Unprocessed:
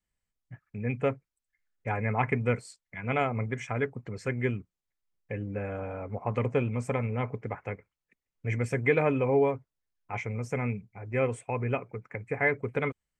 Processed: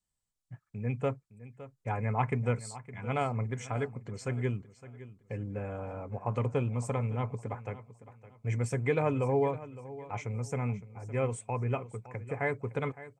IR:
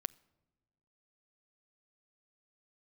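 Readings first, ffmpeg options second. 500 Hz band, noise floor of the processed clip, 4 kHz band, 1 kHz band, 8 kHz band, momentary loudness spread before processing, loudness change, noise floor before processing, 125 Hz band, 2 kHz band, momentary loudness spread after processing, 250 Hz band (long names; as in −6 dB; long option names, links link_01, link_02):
−4.0 dB, −83 dBFS, −2.0 dB, −2.0 dB, +4.0 dB, 14 LU, −3.0 dB, below −85 dBFS, 0.0 dB, −7.5 dB, 16 LU, −3.5 dB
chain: -af "equalizer=frequency=125:width_type=o:width=1:gain=5,equalizer=frequency=1000:width_type=o:width=1:gain=5,equalizer=frequency=2000:width_type=o:width=1:gain=-6,equalizer=frequency=4000:width_type=o:width=1:gain=4,equalizer=frequency=8000:width_type=o:width=1:gain=9,aecho=1:1:562|1124|1686:0.158|0.0475|0.0143,volume=-5dB"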